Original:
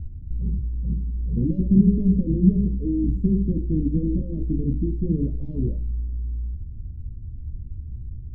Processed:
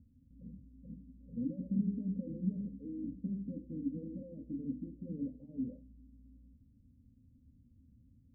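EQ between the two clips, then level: two resonant band-passes 370 Hz, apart 1 oct; -5.5 dB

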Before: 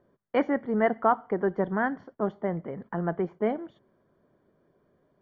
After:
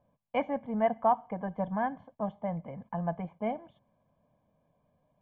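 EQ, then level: Butterworth band-stop 1.9 kHz, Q 5.5; distance through air 82 m; static phaser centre 1.4 kHz, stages 6; 0.0 dB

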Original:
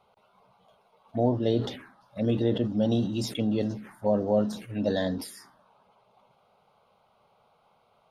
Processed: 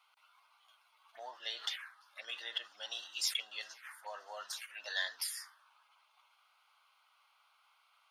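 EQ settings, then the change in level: high-pass 1.3 kHz 24 dB/octave; band-stop 3.8 kHz, Q 19; +3.5 dB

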